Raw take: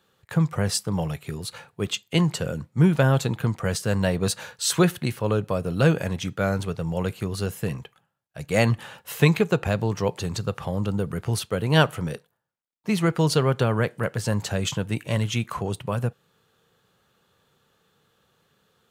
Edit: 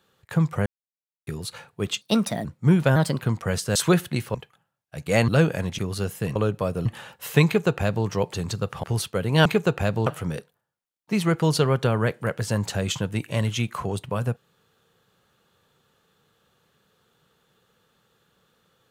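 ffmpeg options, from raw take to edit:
-filter_complex "[0:a]asplit=16[a][b][c][d][e][f][g][h][i][j][k][l][m][n][o][p];[a]atrim=end=0.66,asetpts=PTS-STARTPTS,afade=t=out:st=0.656:d=0.004:c=hsin[q];[b]atrim=start=0.66:end=1.27,asetpts=PTS-STARTPTS,volume=0[r];[c]atrim=start=1.27:end=2.014,asetpts=PTS-STARTPTS,afade=t=in:d=0.004:c=hsin[s];[d]atrim=start=2.01:end=2.58,asetpts=PTS-STARTPTS,asetrate=57330,aresample=44100,atrim=end_sample=19336,asetpts=PTS-STARTPTS[t];[e]atrim=start=2.576:end=3.094[u];[f]atrim=start=3.09:end=3.39,asetpts=PTS-STARTPTS,asetrate=51597,aresample=44100[v];[g]atrim=start=3.386:end=3.932[w];[h]atrim=start=4.658:end=5.252[x];[i]atrim=start=7.768:end=8.712[y];[j]atrim=start=5.748:end=6.252[z];[k]atrim=start=7.198:end=7.772[aa];[l]atrim=start=5.248:end=5.752[ab];[m]atrim=start=8.708:end=10.692[ac];[n]atrim=start=11.208:end=11.832[ad];[o]atrim=start=9.308:end=9.922[ae];[p]atrim=start=11.828[af];[q][r][s]concat=n=3:v=0:a=1[ag];[ag][t]acrossfade=d=0.004:c1=hsin:c2=hsin[ah];[ah][u]acrossfade=d=0.004:c1=hsin:c2=hsin[ai];[ai][v]acrossfade=d=0.004:c1=hsin:c2=hsin[aj];[aj][w]acrossfade=d=0.004:c1=hsin:c2=hsin[ak];[ak][x]acrossfade=d=0.004:c1=hsin:c2=hsin[al];[al][y]acrossfade=d=0.004:c1=hsin:c2=hsin[am];[am][z]acrossfade=d=0.004:c1=hsin:c2=hsin[an];[an][aa]acrossfade=d=0.004:c1=hsin:c2=hsin[ao];[ao][ab]acrossfade=d=0.004:c1=hsin:c2=hsin[ap];[ap][ac]acrossfade=d=0.004:c1=hsin:c2=hsin[aq];[aq][ad]acrossfade=d=0.004:c1=hsin:c2=hsin[ar];[ar][ae]acrossfade=d=0.004:c1=hsin:c2=hsin[as];[as][af]acrossfade=d=0.004:c1=hsin:c2=hsin"

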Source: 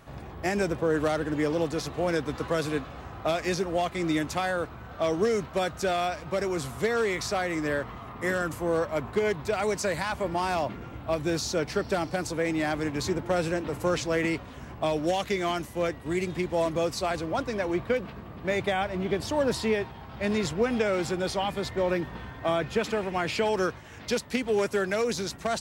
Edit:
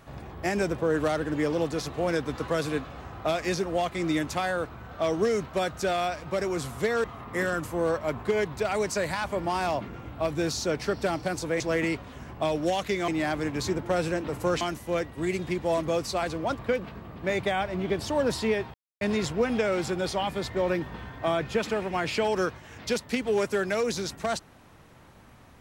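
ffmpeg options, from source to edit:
-filter_complex "[0:a]asplit=8[a][b][c][d][e][f][g][h];[a]atrim=end=7.042[i];[b]atrim=start=7.918:end=12.482[j];[c]atrim=start=14.008:end=15.492[k];[d]atrim=start=12.478:end=14.012[l];[e]atrim=start=15.488:end=17.472[m];[f]atrim=start=17.798:end=19.95,asetpts=PTS-STARTPTS,afade=t=out:st=2.148:d=0.004:c=hsin[n];[g]atrim=start=19.95:end=20.22,asetpts=PTS-STARTPTS,volume=0[o];[h]atrim=start=20.22,asetpts=PTS-STARTPTS,afade=t=in:d=0.004:c=hsin[p];[i][j]acrossfade=d=0.004:c1=hsin:c2=hsin[q];[q][k]acrossfade=d=0.004:c1=hsin:c2=hsin[r];[r][l]acrossfade=d=0.004:c1=hsin:c2=hsin[s];[s][m]acrossfade=d=0.004:c1=hsin:c2=hsin[t];[n][o][p]concat=n=3:v=0:a=1[u];[t][u]acrossfade=d=0.004:c1=hsin:c2=hsin"

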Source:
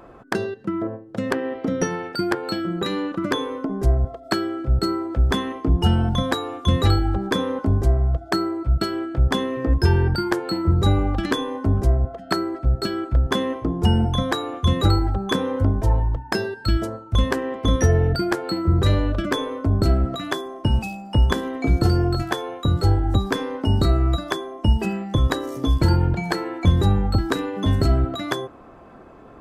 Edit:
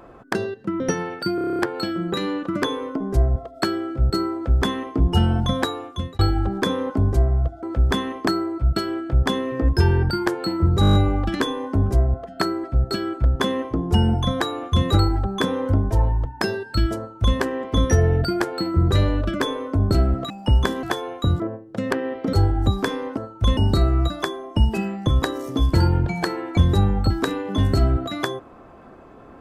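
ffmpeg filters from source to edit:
-filter_complex "[0:a]asplit=26[a][b][c][d][e][f][g][h][i][j][k][l][m][n][o][p][q][r][s][t][u][v][w][x][y][z];[a]atrim=end=0.802[aa];[b]atrim=start=1.728:end=2.312[ab];[c]atrim=start=2.278:end=2.312[ac];[d]atrim=start=2.278:end=2.312[ad];[e]atrim=start=2.278:end=2.312[ae];[f]atrim=start=2.278:end=2.312[af];[g]atrim=start=2.278:end=2.312[ag];[h]atrim=start=2.278:end=2.312[ah];[i]atrim=start=2.278:end=2.312[ai];[j]atrim=start=2.278:end=6.88,asetpts=PTS-STARTPTS,afade=t=out:st=4.092:d=0.51[aj];[k]atrim=start=6.88:end=8.322,asetpts=PTS-STARTPTS,afade=t=in:d=0.004:c=hsin[ak];[l]atrim=start=5.028:end=5.672[al];[m]atrim=start=8.318:end=10.882[am];[n]atrim=start=10.858:end=10.882[an];[o]atrim=start=10.858:end=10.882[ao];[p]atrim=start=10.858:end=10.882[ap];[q]atrim=start=10.858:end=10.882[aq];[r]atrim=start=10.858:end=10.882[ar];[s]atrim=start=10.858:end=10.882[as];[t]atrim=start=10.858:end=20.212[at];[u]atrim=start=20.968:end=21.502[au];[v]atrim=start=22.238:end=22.812[av];[w]atrim=start=0.798:end=1.732[aw];[x]atrim=start=22.808:end=23.652[ax];[y]atrim=start=16.878:end=17.282[ay];[z]atrim=start=23.648[az];[aa][ab]acrossfade=d=0.004:c1=hsin:c2=hsin[ba];[ba][ac]acrossfade=d=0.004:c1=hsin:c2=hsin[bb];[bb][ad]acrossfade=d=0.004:c1=hsin:c2=hsin[bc];[bc][ae]acrossfade=d=0.004:c1=hsin:c2=hsin[bd];[bd][af]acrossfade=d=0.004:c1=hsin:c2=hsin[be];[be][ag]acrossfade=d=0.004:c1=hsin:c2=hsin[bf];[bf][ah]acrossfade=d=0.004:c1=hsin:c2=hsin[bg];[bg][ai]acrossfade=d=0.004:c1=hsin:c2=hsin[bh];[aj][ak]concat=n=2:v=0:a=1[bi];[bh][bi]acrossfade=d=0.004:c1=hsin:c2=hsin[bj];[bj][al]acrossfade=d=0.004:c1=hsin:c2=hsin[bk];[bk][am]acrossfade=d=0.004:c1=hsin:c2=hsin[bl];[bl][an]acrossfade=d=0.004:c1=hsin:c2=hsin[bm];[bm][ao]acrossfade=d=0.004:c1=hsin:c2=hsin[bn];[bn][ap]acrossfade=d=0.004:c1=hsin:c2=hsin[bo];[bo][aq]acrossfade=d=0.004:c1=hsin:c2=hsin[bp];[bp][ar]acrossfade=d=0.004:c1=hsin:c2=hsin[bq];[bq][as]acrossfade=d=0.004:c1=hsin:c2=hsin[br];[br][at]acrossfade=d=0.004:c1=hsin:c2=hsin[bs];[bs][au]acrossfade=d=0.004:c1=hsin:c2=hsin[bt];[bt][av]acrossfade=d=0.004:c1=hsin:c2=hsin[bu];[bu][aw]acrossfade=d=0.004:c1=hsin:c2=hsin[bv];[bv][ax]acrossfade=d=0.004:c1=hsin:c2=hsin[bw];[bw][ay]acrossfade=d=0.004:c1=hsin:c2=hsin[bx];[bx][az]acrossfade=d=0.004:c1=hsin:c2=hsin"

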